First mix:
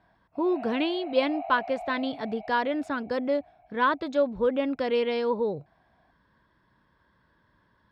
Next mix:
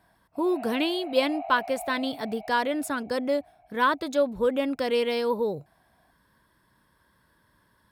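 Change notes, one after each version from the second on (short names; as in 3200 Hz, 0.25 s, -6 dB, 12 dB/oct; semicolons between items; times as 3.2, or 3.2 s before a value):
speech: remove air absorption 170 m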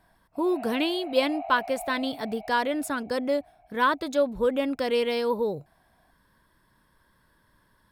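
master: remove HPF 53 Hz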